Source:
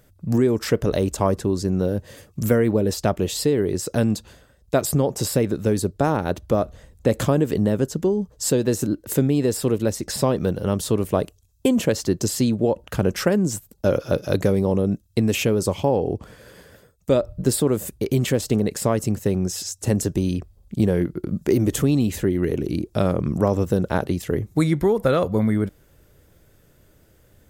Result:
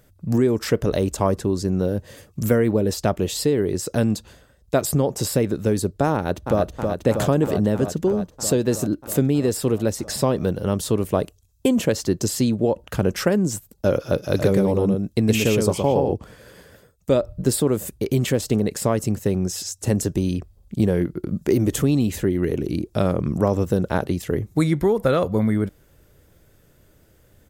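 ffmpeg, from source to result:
-filter_complex "[0:a]asplit=2[a][b];[b]afade=t=in:st=6.14:d=0.01,afade=t=out:st=6.61:d=0.01,aecho=0:1:320|640|960|1280|1600|1920|2240|2560|2880|3200|3520|3840:0.595662|0.47653|0.381224|0.304979|0.243983|0.195187|0.156149|0.124919|0.0999355|0.0799484|0.0639587|0.051167[c];[a][c]amix=inputs=2:normalize=0,asettb=1/sr,asplit=3[d][e][f];[d]atrim=end=14.184[g];[e]atrim=start=14.18:end=16.14,asetpts=PTS-STARTPTS,afade=t=in:d=0.004:c=qsin,afade=t=out:st=1.956:d=0.004:c=qsin,aecho=1:1:118:0.668,atrim=end_sample=86436[h];[f]atrim=start=16.136[i];[g][h]acrossfade=d=0.004:c1=hsin:c2=qsin[j];[j][i]acrossfade=d=0.004:c1=qsin:c2=hsin"

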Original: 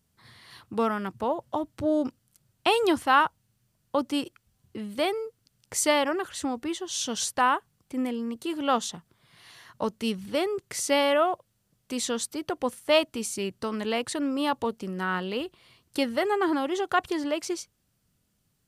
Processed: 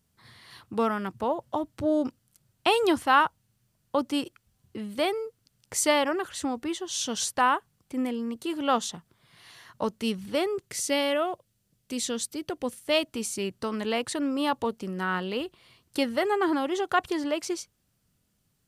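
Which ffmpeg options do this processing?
-filter_complex "[0:a]asettb=1/sr,asplit=3[a][b][c];[a]atrim=end=10.664[d];[b]atrim=start=10.66:end=13.06,asetpts=PTS-STARTPTS,afade=t=in:d=0.004:c=qsin,afade=t=out:st=2.396:d=0.004:c=qsin,equalizer=f=1k:t=o:w=1.6:g=-7[e];[c]atrim=start=13.056[f];[d][e]acrossfade=d=0.004:c1=hsin:c2=qsin[g];[g][f]acrossfade=d=0.004:c1=qsin:c2=hsin"

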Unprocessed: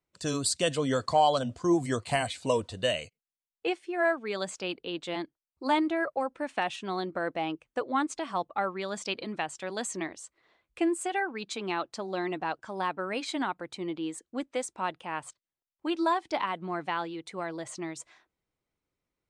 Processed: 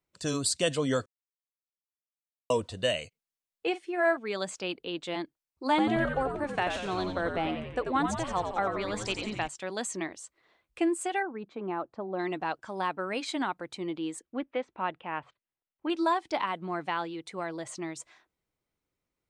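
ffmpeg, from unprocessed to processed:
-filter_complex "[0:a]asettb=1/sr,asplit=3[a][b][c];[a]atrim=end=3.694[d];[b]atrim=start=3.69:end=4.17,asetpts=PTS-STARTPTS,afade=t=in:d=0.004:c=qsin,afade=t=out:st=0.476:d=0.004:c=qsin,asplit=2[e][f];[f]adelay=45,volume=-13.5dB[g];[e][g]amix=inputs=2:normalize=0,atrim=end_sample=21168[h];[c]atrim=start=4.166[i];[d][h]acrossfade=d=0.004:c1=hsin:c2=qsin[j];[j][i]acrossfade=d=0.004:c1=qsin:c2=hsin,asettb=1/sr,asplit=3[k][l][m];[k]atrim=end=5.694[n];[l]atrim=start=5.69:end=9.48,asetpts=PTS-STARTPTS,afade=t=in:d=0.004:c=qsin,afade=t=out:st=3.786:d=0.004:c=qsin,asplit=9[o][p][q][r][s][t][u][v][w];[p]adelay=89,afreqshift=-89,volume=-6dB[x];[q]adelay=178,afreqshift=-178,volume=-10.3dB[y];[r]adelay=267,afreqshift=-267,volume=-14.6dB[z];[s]adelay=356,afreqshift=-356,volume=-18.9dB[aa];[t]adelay=445,afreqshift=-445,volume=-23.2dB[ab];[u]adelay=534,afreqshift=-534,volume=-27.5dB[ac];[v]adelay=623,afreqshift=-623,volume=-31.8dB[ad];[w]adelay=712,afreqshift=-712,volume=-36.1dB[ae];[o][x][y][z][aa][ab][ac][ad][ae]amix=inputs=9:normalize=0,atrim=end_sample=167139[af];[m]atrim=start=9.476[ag];[n][af]acrossfade=d=0.004:c1=hsin:c2=qsin[ah];[ah][ag]acrossfade=d=0.004:c1=qsin:c2=hsin,asplit=3[ai][aj][ak];[ai]afade=t=out:st=11.22:d=0.02[al];[aj]lowpass=1.1k,afade=t=in:st=11.22:d=0.02,afade=t=out:st=12.18:d=0.02[am];[ak]afade=t=in:st=12.18:d=0.02[an];[al][am][an]amix=inputs=3:normalize=0,asettb=1/sr,asplit=3[ao][ap][aq];[ao]atrim=end=14.224[ar];[ap]atrim=start=14.22:end=15.9,asetpts=PTS-STARTPTS,afade=t=in:d=0.004:c=qsin,afade=t=out:st=1.676:d=0.004:c=qsin,lowpass=f=3.1k:w=0.5412,lowpass=f=3.1k:w=1.3066[as];[aq]atrim=start=15.896[at];[ar][as]acrossfade=d=0.004:c1=hsin:c2=qsin[au];[au][at]acrossfade=d=0.004:c1=qsin:c2=hsin,asplit=3[av][aw][ax];[av]atrim=end=1.06,asetpts=PTS-STARTPTS,afade=t=out:st=1.056:d=0.004:c=hsin[ay];[aw]atrim=start=1.06:end=2.5,asetpts=PTS-STARTPTS,volume=0[az];[ax]atrim=start=2.5,asetpts=PTS-STARTPTS,afade=t=in:d=0.004:c=hsin[ba];[ay][az][ba]concat=n=3:v=0:a=1"

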